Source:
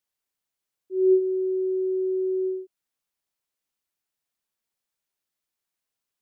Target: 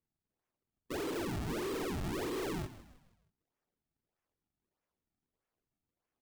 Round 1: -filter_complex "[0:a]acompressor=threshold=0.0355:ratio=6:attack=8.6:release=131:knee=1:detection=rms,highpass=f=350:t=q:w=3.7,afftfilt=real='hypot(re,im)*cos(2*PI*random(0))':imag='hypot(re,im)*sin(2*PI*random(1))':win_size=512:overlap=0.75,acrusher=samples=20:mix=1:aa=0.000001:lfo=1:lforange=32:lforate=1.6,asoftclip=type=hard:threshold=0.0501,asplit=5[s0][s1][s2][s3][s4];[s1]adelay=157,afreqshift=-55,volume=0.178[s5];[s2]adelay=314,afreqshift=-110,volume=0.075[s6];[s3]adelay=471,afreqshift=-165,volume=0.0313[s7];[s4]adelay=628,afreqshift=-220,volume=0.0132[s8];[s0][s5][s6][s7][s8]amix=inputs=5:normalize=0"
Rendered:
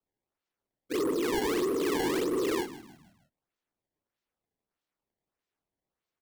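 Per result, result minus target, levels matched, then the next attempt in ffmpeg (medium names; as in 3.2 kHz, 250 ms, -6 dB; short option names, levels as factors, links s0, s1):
decimation with a swept rate: distortion -10 dB; hard clipper: distortion -5 dB
-filter_complex "[0:a]acompressor=threshold=0.0355:ratio=6:attack=8.6:release=131:knee=1:detection=rms,highpass=f=350:t=q:w=3.7,afftfilt=real='hypot(re,im)*cos(2*PI*random(0))':imag='hypot(re,im)*sin(2*PI*random(1))':win_size=512:overlap=0.75,acrusher=samples=50:mix=1:aa=0.000001:lfo=1:lforange=80:lforate=1.6,asoftclip=type=hard:threshold=0.0501,asplit=5[s0][s1][s2][s3][s4];[s1]adelay=157,afreqshift=-55,volume=0.178[s5];[s2]adelay=314,afreqshift=-110,volume=0.075[s6];[s3]adelay=471,afreqshift=-165,volume=0.0313[s7];[s4]adelay=628,afreqshift=-220,volume=0.0132[s8];[s0][s5][s6][s7][s8]amix=inputs=5:normalize=0"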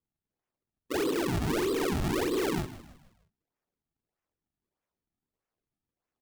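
hard clipper: distortion -5 dB
-filter_complex "[0:a]acompressor=threshold=0.0355:ratio=6:attack=8.6:release=131:knee=1:detection=rms,highpass=f=350:t=q:w=3.7,afftfilt=real='hypot(re,im)*cos(2*PI*random(0))':imag='hypot(re,im)*sin(2*PI*random(1))':win_size=512:overlap=0.75,acrusher=samples=50:mix=1:aa=0.000001:lfo=1:lforange=80:lforate=1.6,asoftclip=type=hard:threshold=0.0158,asplit=5[s0][s1][s2][s3][s4];[s1]adelay=157,afreqshift=-55,volume=0.178[s5];[s2]adelay=314,afreqshift=-110,volume=0.075[s6];[s3]adelay=471,afreqshift=-165,volume=0.0313[s7];[s4]adelay=628,afreqshift=-220,volume=0.0132[s8];[s0][s5][s6][s7][s8]amix=inputs=5:normalize=0"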